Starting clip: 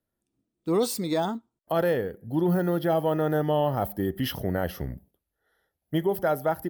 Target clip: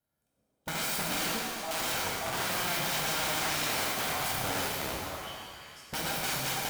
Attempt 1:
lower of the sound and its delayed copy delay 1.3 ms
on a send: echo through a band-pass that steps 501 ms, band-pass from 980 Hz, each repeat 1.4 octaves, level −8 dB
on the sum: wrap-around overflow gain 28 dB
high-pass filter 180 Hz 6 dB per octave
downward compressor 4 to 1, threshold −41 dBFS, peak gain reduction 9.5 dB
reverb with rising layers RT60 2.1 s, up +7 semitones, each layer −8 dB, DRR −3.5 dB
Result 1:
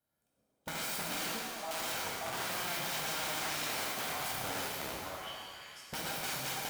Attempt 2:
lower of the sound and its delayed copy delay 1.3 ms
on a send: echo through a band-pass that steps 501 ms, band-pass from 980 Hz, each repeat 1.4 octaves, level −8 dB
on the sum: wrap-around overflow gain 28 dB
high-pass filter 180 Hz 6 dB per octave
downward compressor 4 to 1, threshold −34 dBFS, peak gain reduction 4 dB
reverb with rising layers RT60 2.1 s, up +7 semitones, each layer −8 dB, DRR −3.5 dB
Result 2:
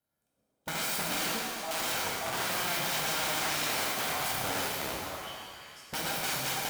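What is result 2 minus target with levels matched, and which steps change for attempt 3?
125 Hz band −2.5 dB
change: high-pass filter 90 Hz 6 dB per octave

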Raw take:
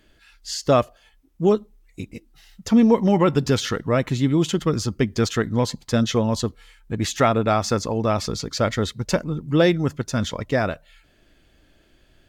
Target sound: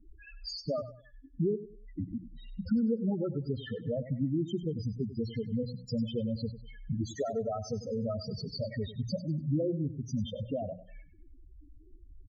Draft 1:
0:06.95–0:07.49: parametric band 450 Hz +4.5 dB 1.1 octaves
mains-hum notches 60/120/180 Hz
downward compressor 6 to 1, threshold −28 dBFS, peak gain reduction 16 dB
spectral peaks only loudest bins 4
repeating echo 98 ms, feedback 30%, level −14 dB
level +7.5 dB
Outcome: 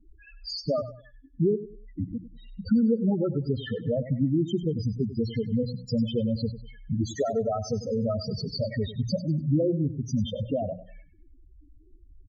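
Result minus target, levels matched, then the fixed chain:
downward compressor: peak gain reduction −6 dB
0:06.95–0:07.49: parametric band 450 Hz +4.5 dB 1.1 octaves
mains-hum notches 60/120/180 Hz
downward compressor 6 to 1, threshold −35.5 dBFS, peak gain reduction 22.5 dB
spectral peaks only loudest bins 4
repeating echo 98 ms, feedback 30%, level −14 dB
level +7.5 dB

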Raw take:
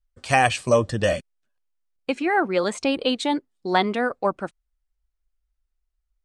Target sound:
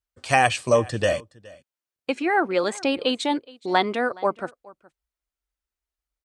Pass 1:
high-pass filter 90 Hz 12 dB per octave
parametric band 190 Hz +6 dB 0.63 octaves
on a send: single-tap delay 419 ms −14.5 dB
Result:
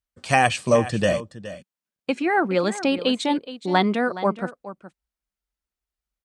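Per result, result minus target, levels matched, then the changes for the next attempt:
echo-to-direct +8.5 dB; 250 Hz band +3.5 dB
change: single-tap delay 419 ms −23 dB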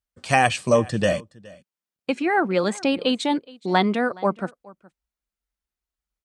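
250 Hz band +3.0 dB
change: parametric band 190 Hz −5 dB 0.63 octaves

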